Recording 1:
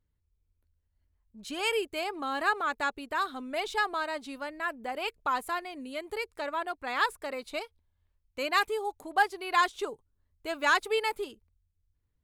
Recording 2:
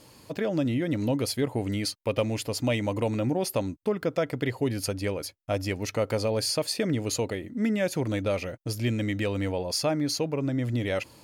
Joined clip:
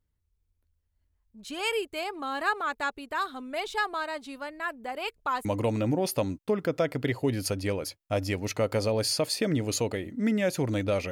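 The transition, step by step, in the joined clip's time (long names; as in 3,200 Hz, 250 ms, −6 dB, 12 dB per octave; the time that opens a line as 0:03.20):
recording 1
0:05.45: continue with recording 2 from 0:02.83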